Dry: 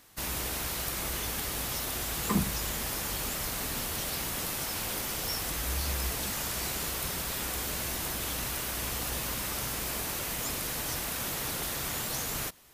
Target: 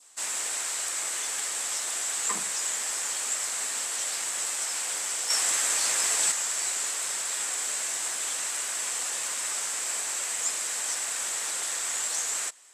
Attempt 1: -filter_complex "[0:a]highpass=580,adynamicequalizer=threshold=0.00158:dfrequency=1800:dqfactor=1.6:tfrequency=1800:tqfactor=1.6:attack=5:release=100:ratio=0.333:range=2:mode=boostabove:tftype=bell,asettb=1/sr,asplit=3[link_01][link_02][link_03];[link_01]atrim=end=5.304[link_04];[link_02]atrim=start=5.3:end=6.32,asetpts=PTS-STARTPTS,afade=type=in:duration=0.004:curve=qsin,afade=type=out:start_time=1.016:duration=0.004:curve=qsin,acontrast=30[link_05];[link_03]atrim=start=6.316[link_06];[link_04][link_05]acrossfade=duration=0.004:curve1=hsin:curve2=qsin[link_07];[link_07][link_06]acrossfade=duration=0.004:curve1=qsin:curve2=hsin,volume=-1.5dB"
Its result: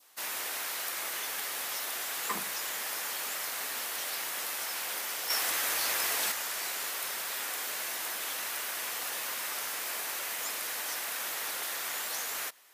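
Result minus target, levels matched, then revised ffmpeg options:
8,000 Hz band −5.0 dB
-filter_complex "[0:a]highpass=580,adynamicequalizer=threshold=0.00158:dfrequency=1800:dqfactor=1.6:tfrequency=1800:tqfactor=1.6:attack=5:release=100:ratio=0.333:range=2:mode=boostabove:tftype=bell,lowpass=frequency=7800:width_type=q:width=6.9,asettb=1/sr,asplit=3[link_01][link_02][link_03];[link_01]atrim=end=5.304[link_04];[link_02]atrim=start=5.3:end=6.32,asetpts=PTS-STARTPTS,afade=type=in:duration=0.004:curve=qsin,afade=type=out:start_time=1.016:duration=0.004:curve=qsin,acontrast=30[link_05];[link_03]atrim=start=6.316[link_06];[link_04][link_05]acrossfade=duration=0.004:curve1=hsin:curve2=qsin[link_07];[link_07][link_06]acrossfade=duration=0.004:curve1=qsin:curve2=hsin,volume=-1.5dB"

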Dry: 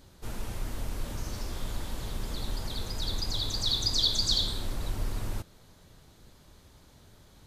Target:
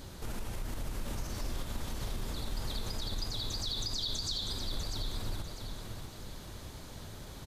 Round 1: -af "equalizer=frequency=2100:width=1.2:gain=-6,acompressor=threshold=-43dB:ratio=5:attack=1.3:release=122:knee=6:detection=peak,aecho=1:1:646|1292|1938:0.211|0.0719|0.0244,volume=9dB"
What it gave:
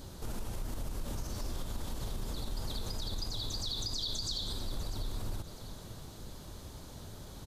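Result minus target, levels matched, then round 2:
echo-to-direct −7 dB; 2,000 Hz band −4.0 dB
-af "acompressor=threshold=-43dB:ratio=5:attack=1.3:release=122:knee=6:detection=peak,aecho=1:1:646|1292|1938|2584:0.473|0.161|0.0547|0.0186,volume=9dB"

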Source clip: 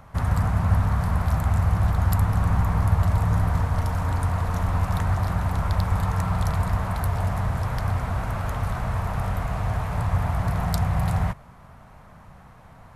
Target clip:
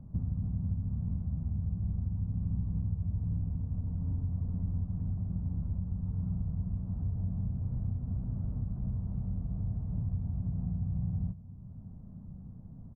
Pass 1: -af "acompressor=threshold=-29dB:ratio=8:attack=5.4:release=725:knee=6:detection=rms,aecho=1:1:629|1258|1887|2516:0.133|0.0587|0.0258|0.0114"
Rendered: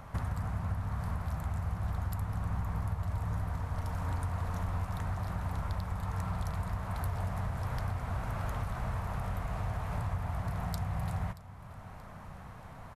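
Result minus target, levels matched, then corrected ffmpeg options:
250 Hz band −3.5 dB
-af "acompressor=threshold=-29dB:ratio=8:attack=5.4:release=725:knee=6:detection=rms,lowpass=frequency=220:width_type=q:width=1.8,aecho=1:1:629|1258|1887|2516:0.133|0.0587|0.0258|0.0114"

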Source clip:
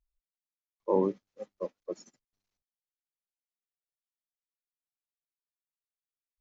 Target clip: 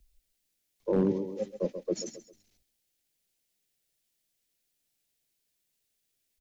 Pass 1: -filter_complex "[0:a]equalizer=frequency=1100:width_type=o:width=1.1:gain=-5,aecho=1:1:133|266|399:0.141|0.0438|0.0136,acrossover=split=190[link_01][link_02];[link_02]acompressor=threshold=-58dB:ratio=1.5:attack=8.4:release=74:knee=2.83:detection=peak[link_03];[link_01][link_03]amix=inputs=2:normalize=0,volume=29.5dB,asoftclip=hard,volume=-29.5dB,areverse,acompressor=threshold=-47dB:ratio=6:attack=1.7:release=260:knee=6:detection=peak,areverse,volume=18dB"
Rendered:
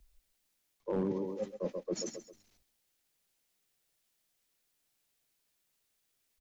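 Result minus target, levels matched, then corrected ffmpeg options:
downward compressor: peak gain reduction +7.5 dB; 1,000 Hz band +3.5 dB
-filter_complex "[0:a]equalizer=frequency=1100:width_type=o:width=1.1:gain=-14.5,aecho=1:1:133|266|399:0.141|0.0438|0.0136,acrossover=split=190[link_01][link_02];[link_02]acompressor=threshold=-58dB:ratio=1.5:attack=8.4:release=74:knee=2.83:detection=peak[link_03];[link_01][link_03]amix=inputs=2:normalize=0,volume=29.5dB,asoftclip=hard,volume=-29.5dB,areverse,acompressor=threshold=-38dB:ratio=6:attack=1.7:release=260:knee=6:detection=peak,areverse,volume=18dB"

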